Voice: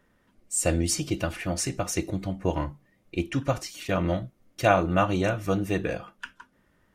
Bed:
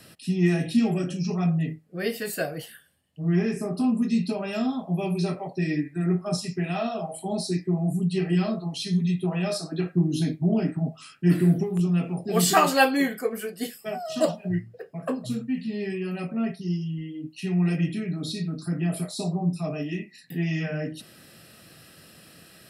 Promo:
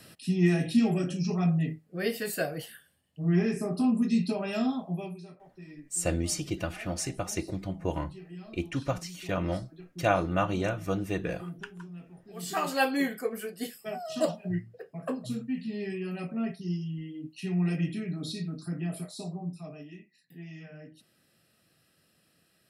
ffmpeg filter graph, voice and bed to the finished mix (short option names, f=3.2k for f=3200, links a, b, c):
-filter_complex "[0:a]adelay=5400,volume=-4.5dB[a];[1:a]volume=14.5dB,afade=t=out:st=4.71:d=0.5:silence=0.112202,afade=t=in:st=12.37:d=0.62:silence=0.149624,afade=t=out:st=18.28:d=1.74:silence=0.223872[b];[a][b]amix=inputs=2:normalize=0"